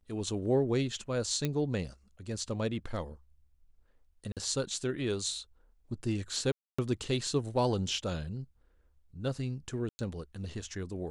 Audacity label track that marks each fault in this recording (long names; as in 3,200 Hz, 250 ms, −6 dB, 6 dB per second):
1.450000	1.450000	click −17 dBFS
4.320000	4.370000	drop-out 47 ms
6.520000	6.790000	drop-out 265 ms
9.890000	9.990000	drop-out 100 ms